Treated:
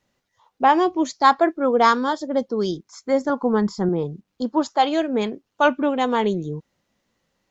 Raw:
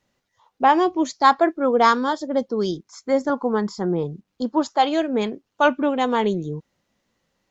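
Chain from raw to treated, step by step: 3.43–3.89 low shelf 150 Hz +11.5 dB

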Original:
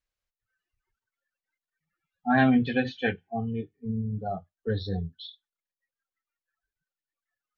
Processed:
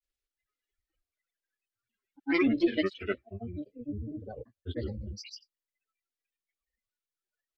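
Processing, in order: grains 0.1 s, grains 20/s, pitch spread up and down by 7 st; fixed phaser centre 380 Hz, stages 4

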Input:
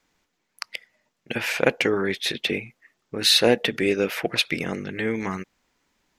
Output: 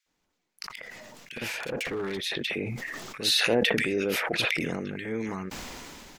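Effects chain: 0.74–2.24 overloaded stage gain 21.5 dB; bands offset in time highs, lows 60 ms, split 1700 Hz; sustainer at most 20 dB/s; gain -6.5 dB

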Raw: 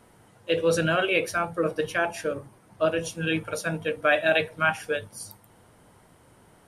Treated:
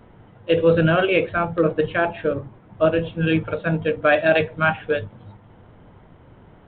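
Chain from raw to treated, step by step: tilt -2 dB/oct; gain +4.5 dB; G.726 40 kbps 8000 Hz

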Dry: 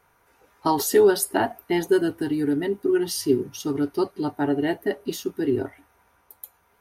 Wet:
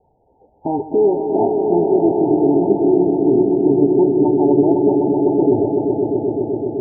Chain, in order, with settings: limiter -15.5 dBFS, peak gain reduction 7.5 dB; Chebyshev low-pass 900 Hz, order 10; notches 50/100/150 Hz; swelling echo 0.127 s, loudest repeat 5, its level -7.5 dB; gain +7.5 dB

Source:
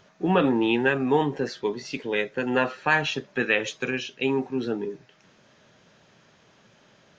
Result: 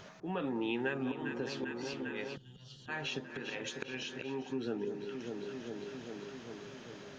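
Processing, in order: auto swell 0.552 s; echo with dull and thin repeats by turns 0.199 s, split 1200 Hz, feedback 83%, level -11 dB; compressor 3:1, threshold -43 dBFS, peak gain reduction 19 dB; spectral gain 2.36–2.88, 200–2800 Hz -24 dB; gain +5 dB

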